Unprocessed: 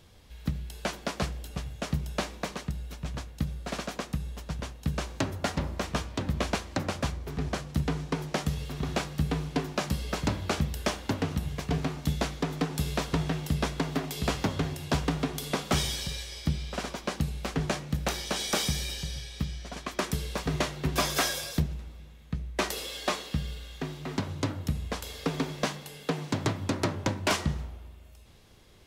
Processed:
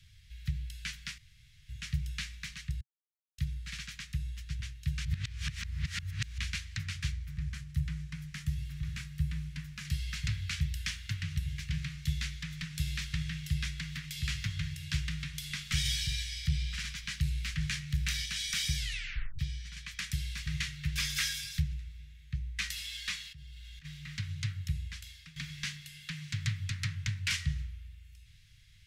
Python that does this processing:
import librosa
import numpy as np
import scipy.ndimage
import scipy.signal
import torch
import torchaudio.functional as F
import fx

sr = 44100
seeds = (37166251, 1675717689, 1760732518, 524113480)

y = fx.peak_eq(x, sr, hz=3800.0, db=-8.0, octaves=2.5, at=(7.26, 9.85))
y = fx.leveller(y, sr, passes=1, at=(15.85, 18.26))
y = fx.level_steps(y, sr, step_db=23, at=(23.29, 23.84), fade=0.02)
y = fx.edit(y, sr, fx.room_tone_fill(start_s=1.18, length_s=0.51),
    fx.silence(start_s=2.81, length_s=0.57),
    fx.reverse_span(start_s=5.05, length_s=1.33),
    fx.tape_stop(start_s=18.76, length_s=0.63),
    fx.fade_out_to(start_s=24.37, length_s=0.99, curve='qsin', floor_db=-17.0), tone=tone)
y = scipy.signal.sosfilt(scipy.signal.ellip(3, 1.0, 80, [130.0, 1900.0], 'bandstop', fs=sr, output='sos'), y)
y = fx.high_shelf(y, sr, hz=9400.0, db=-10.5)